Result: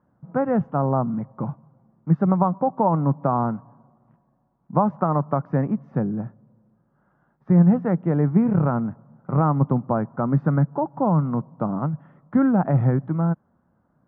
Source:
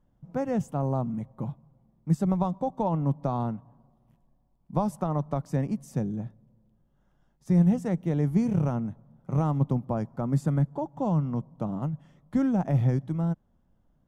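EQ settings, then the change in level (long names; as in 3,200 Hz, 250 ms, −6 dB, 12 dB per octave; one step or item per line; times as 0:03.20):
high-pass filter 120 Hz
low-pass with resonance 1,400 Hz, resonance Q 2.4
high-frequency loss of the air 230 metres
+6.5 dB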